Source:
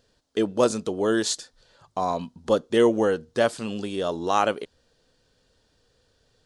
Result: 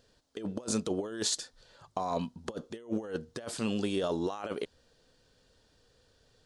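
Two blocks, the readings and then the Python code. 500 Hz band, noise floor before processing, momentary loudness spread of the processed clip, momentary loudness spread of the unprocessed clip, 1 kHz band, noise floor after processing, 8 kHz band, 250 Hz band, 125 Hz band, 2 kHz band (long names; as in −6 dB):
−12.5 dB, −67 dBFS, 11 LU, 11 LU, −12.5 dB, −68 dBFS, −3.5 dB, −8.0 dB, −4.5 dB, −13.0 dB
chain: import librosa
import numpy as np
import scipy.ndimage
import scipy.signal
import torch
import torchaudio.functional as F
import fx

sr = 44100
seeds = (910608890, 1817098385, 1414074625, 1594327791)

y = fx.over_compress(x, sr, threshold_db=-27.0, ratio=-0.5)
y = y * 10.0 ** (-5.5 / 20.0)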